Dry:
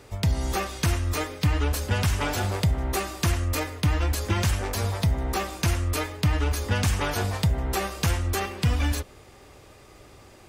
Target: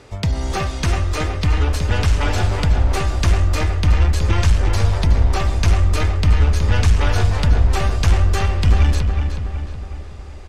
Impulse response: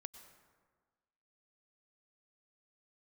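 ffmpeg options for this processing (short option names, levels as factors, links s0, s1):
-filter_complex "[0:a]lowpass=7100,aeval=exprs='0.224*(cos(1*acos(clip(val(0)/0.224,-1,1)))-cos(1*PI/2))+0.00501*(cos(8*acos(clip(val(0)/0.224,-1,1)))-cos(8*PI/2))':c=same,asubboost=boost=7:cutoff=57,aeval=exprs='0.562*(cos(1*acos(clip(val(0)/0.562,-1,1)))-cos(1*PI/2))+0.0794*(cos(5*acos(clip(val(0)/0.562,-1,1)))-cos(5*PI/2))':c=same,asplit=2[s0][s1];[s1]adelay=369,lowpass=f=3300:p=1,volume=0.531,asplit=2[s2][s3];[s3]adelay=369,lowpass=f=3300:p=1,volume=0.53,asplit=2[s4][s5];[s5]adelay=369,lowpass=f=3300:p=1,volume=0.53,asplit=2[s6][s7];[s7]adelay=369,lowpass=f=3300:p=1,volume=0.53,asplit=2[s8][s9];[s9]adelay=369,lowpass=f=3300:p=1,volume=0.53,asplit=2[s10][s11];[s11]adelay=369,lowpass=f=3300:p=1,volume=0.53,asplit=2[s12][s13];[s13]adelay=369,lowpass=f=3300:p=1,volume=0.53[s14];[s0][s2][s4][s6][s8][s10][s12][s14]amix=inputs=8:normalize=0"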